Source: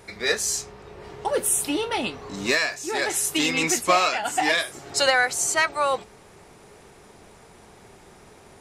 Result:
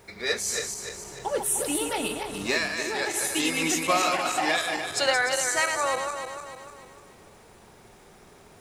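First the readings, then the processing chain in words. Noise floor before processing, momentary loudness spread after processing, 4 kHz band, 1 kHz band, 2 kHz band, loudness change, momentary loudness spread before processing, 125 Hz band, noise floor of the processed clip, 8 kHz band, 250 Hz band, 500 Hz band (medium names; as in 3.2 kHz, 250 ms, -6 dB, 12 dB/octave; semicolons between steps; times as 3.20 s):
-50 dBFS, 12 LU, -2.5 dB, -2.5 dB, -3.0 dB, -3.0 dB, 10 LU, -2.5 dB, -53 dBFS, -2.5 dB, -2.0 dB, -2.5 dB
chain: backward echo that repeats 149 ms, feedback 66%, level -5 dB; word length cut 10-bit, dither none; trim -4.5 dB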